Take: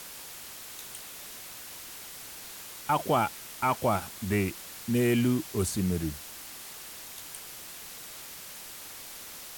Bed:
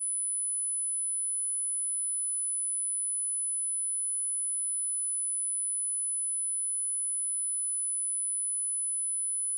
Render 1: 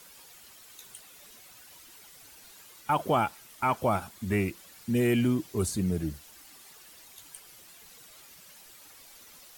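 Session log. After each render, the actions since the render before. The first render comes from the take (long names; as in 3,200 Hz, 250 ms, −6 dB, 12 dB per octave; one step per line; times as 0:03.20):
broadband denoise 11 dB, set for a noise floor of −44 dBFS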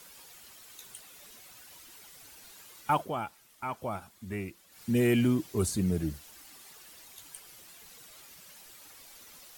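0:02.94–0:04.83: duck −9 dB, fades 0.14 s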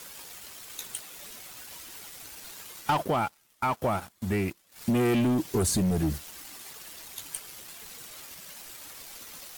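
leveller curve on the samples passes 3
downward compressor 5 to 1, threshold −23 dBFS, peak gain reduction 5.5 dB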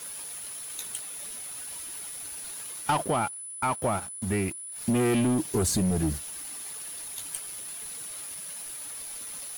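mix in bed −8.5 dB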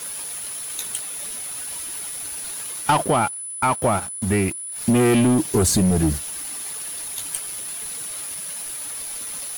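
level +7.5 dB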